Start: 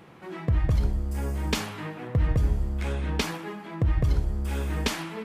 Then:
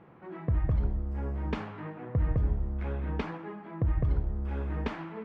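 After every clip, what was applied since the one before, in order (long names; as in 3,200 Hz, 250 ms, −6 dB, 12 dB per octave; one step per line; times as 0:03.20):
low-pass filter 1,600 Hz 12 dB per octave
level −4 dB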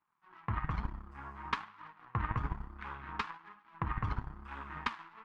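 power curve on the samples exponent 2
flanger 1.1 Hz, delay 2.9 ms, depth 7.2 ms, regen +56%
low shelf with overshoot 760 Hz −11.5 dB, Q 3
level +12 dB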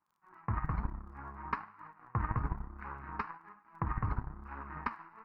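moving average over 13 samples
surface crackle 13 per second −63 dBFS
level +1.5 dB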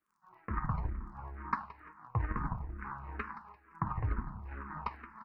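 repeating echo 172 ms, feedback 38%, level −14.5 dB
convolution reverb RT60 0.65 s, pre-delay 5 ms, DRR 16 dB
frequency shifter mixed with the dry sound −2.2 Hz
level +2.5 dB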